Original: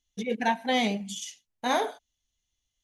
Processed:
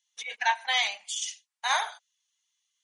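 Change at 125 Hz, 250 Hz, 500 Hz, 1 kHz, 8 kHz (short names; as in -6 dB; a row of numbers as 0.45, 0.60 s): n/a, under -40 dB, -13.5 dB, -0.5 dB, +5.0 dB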